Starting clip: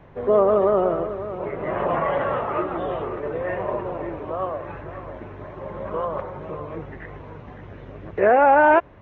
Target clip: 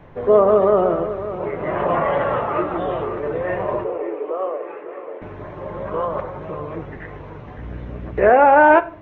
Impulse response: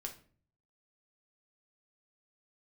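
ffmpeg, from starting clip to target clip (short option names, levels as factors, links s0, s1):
-filter_complex "[0:a]asettb=1/sr,asplit=3[s0][s1][s2];[s0]atrim=end=3.844[s3];[s1]atrim=start=3.84:end=5.22,asetpts=PTS-STARTPTS,afade=t=in:d=0.004:c=qsin,afade=t=out:st=1.376:d=0.004:c=qsin,highpass=f=340:w=0.5412,highpass=f=340:w=1.3066,equalizer=f=450:t=q:w=4:g=9,equalizer=f=650:t=q:w=4:g=-4,equalizer=f=950:t=q:w=4:g=-5,equalizer=f=1600:t=q:w=4:g=-7,lowpass=f=2800:w=0.5412,lowpass=f=2800:w=1.3066[s4];[s2]atrim=start=5.216[s5];[s3][s4]acrossfade=d=0.004:c1=hsin:c2=qsin[s6];[s6][s5]acrossfade=d=0.004:c1=qsin:c2=hsin,asplit=2[s7][s8];[1:a]atrim=start_sample=2205[s9];[s8][s9]afir=irnorm=-1:irlink=0,volume=0.944[s10];[s7][s10]amix=inputs=2:normalize=0,asettb=1/sr,asplit=3[s11][s12][s13];[s11]atrim=end=7.584[s14];[s12]atrim=start=7.58:end=8.31,asetpts=PTS-STARTPTS,afade=t=in:d=0.004:c=qsin,afade=t=out:st=0.726:d=0.004:c=qsin,aeval=exprs='val(0)+0.0316*(sin(2*PI*60*n/s)+sin(2*PI*2*60*n/s)/2+sin(2*PI*3*60*n/s)/3+sin(2*PI*4*60*n/s)/4+sin(2*PI*5*60*n/s)/5)':c=same[s15];[s13]atrim=start=8.306[s16];[s14][s15]acrossfade=d=0.004:c1=hsin:c2=qsin[s17];[s17][s16]acrossfade=d=0.004:c1=qsin:c2=hsin,volume=0.891"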